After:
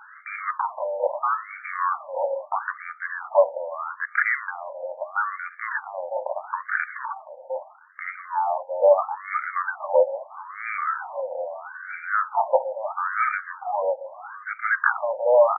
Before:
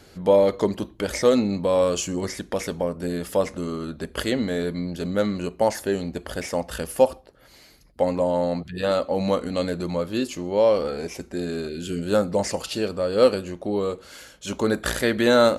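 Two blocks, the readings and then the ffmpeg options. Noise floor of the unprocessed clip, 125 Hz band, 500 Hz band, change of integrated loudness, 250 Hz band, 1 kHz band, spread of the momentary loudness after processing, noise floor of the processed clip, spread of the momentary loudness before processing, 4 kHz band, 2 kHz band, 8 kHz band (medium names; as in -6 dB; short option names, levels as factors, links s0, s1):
-52 dBFS, under -40 dB, -3.0 dB, -2.0 dB, under -40 dB, +5.5 dB, 13 LU, -47 dBFS, 11 LU, under -40 dB, +7.0 dB, under -40 dB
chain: -filter_complex "[0:a]lowpass=2600,tiltshelf=f=1500:g=-4,apsyclip=12.6,asplit=2[s0][s1];[s1]adelay=507,lowpass=f=1600:p=1,volume=0.168,asplit=2[s2][s3];[s3]adelay=507,lowpass=f=1600:p=1,volume=0.5,asplit=2[s4][s5];[s5]adelay=507,lowpass=f=1600:p=1,volume=0.5,asplit=2[s6][s7];[s7]adelay=507,lowpass=f=1600:p=1,volume=0.5,asplit=2[s8][s9];[s9]adelay=507,lowpass=f=1600:p=1,volume=0.5[s10];[s2][s4][s6][s8][s10]amix=inputs=5:normalize=0[s11];[s0][s11]amix=inputs=2:normalize=0,afftfilt=real='re*between(b*sr/1024,670*pow(1700/670,0.5+0.5*sin(2*PI*0.77*pts/sr))/1.41,670*pow(1700/670,0.5+0.5*sin(2*PI*0.77*pts/sr))*1.41)':imag='im*between(b*sr/1024,670*pow(1700/670,0.5+0.5*sin(2*PI*0.77*pts/sr))/1.41,670*pow(1700/670,0.5+0.5*sin(2*PI*0.77*pts/sr))*1.41)':win_size=1024:overlap=0.75,volume=0.473"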